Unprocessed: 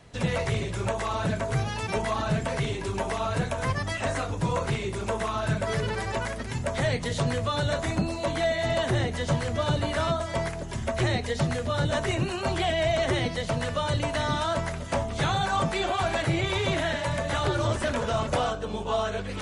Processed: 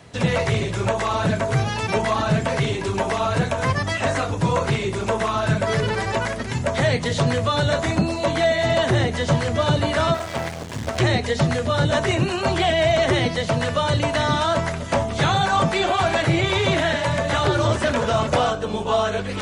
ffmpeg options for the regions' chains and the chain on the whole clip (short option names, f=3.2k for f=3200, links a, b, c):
-filter_complex "[0:a]asettb=1/sr,asplit=3[a][b][c];[a]atrim=end=10.144[d];[b]atrim=start=10.14:end=11,asetpts=PTS-STARTPTS,afade=t=in:d=0.004:c=qsin,afade=t=out:st=0.856:d=0.004:c=qsin,highpass=f=69:w=0.5412,highpass=f=69:w=1.3066,asubboost=boost=5:cutoff=170,acrusher=bits=4:dc=4:mix=0:aa=0.000001[e];[c]atrim=start=10.996[f];[d][e]acrossfade=d=0.004:c1=hsin:c2=qsin[g];[g][f]acrossfade=d=0.004:c1=qsin:c2=hsin,acrossover=split=8700[h][i];[i]acompressor=threshold=-60dB:ratio=4:attack=1:release=60[j];[h][j]amix=inputs=2:normalize=0,highpass=75,acontrast=80"